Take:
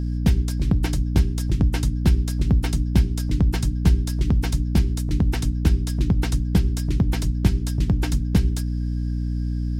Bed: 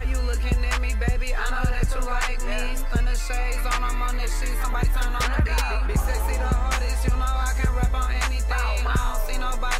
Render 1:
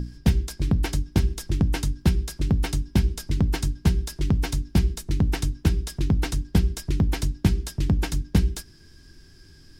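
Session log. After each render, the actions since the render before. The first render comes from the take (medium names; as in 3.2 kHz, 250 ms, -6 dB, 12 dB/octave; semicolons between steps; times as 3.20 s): hum notches 60/120/180/240/300 Hz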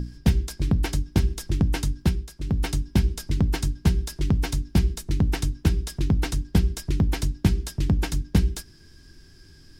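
2.00–2.65 s: dip -9 dB, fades 0.28 s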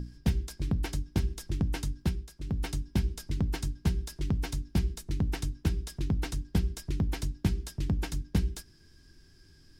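trim -7.5 dB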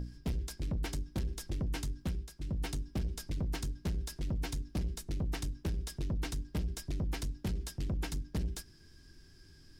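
saturation -30 dBFS, distortion -9 dB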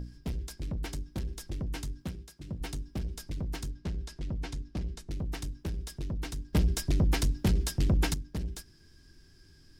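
2.02–2.61 s: high-pass 75 Hz; 3.71–5.11 s: distance through air 52 m; 6.53–8.14 s: gain +9.5 dB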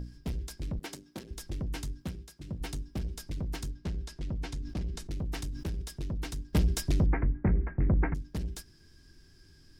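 0.79–1.31 s: high-pass 240 Hz; 4.53–5.82 s: decay stretcher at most 66 dB/s; 7.06–8.15 s: steep low-pass 2.2 kHz 72 dB/octave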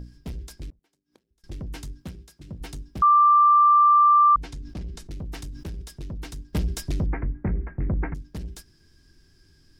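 0.70–1.44 s: inverted gate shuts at -41 dBFS, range -30 dB; 3.02–4.36 s: bleep 1.18 kHz -12.5 dBFS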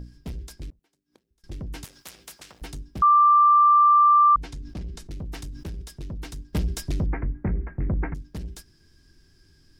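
1.84–2.62 s: spectrum-flattening compressor 10:1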